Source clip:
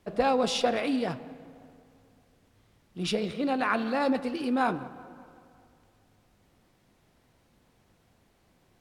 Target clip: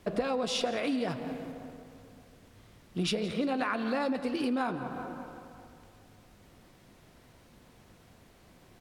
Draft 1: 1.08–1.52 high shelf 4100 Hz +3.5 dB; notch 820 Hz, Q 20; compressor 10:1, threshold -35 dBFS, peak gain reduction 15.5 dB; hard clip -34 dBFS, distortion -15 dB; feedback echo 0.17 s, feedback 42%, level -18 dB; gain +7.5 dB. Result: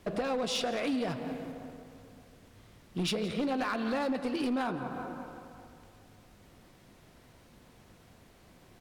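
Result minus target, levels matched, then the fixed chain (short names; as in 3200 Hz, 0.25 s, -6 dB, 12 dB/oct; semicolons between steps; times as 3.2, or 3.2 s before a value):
hard clip: distortion +31 dB
1.08–1.52 high shelf 4100 Hz +3.5 dB; notch 820 Hz, Q 20; compressor 10:1, threshold -35 dBFS, peak gain reduction 15.5 dB; hard clip -25.5 dBFS, distortion -46 dB; feedback echo 0.17 s, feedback 42%, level -18 dB; gain +7.5 dB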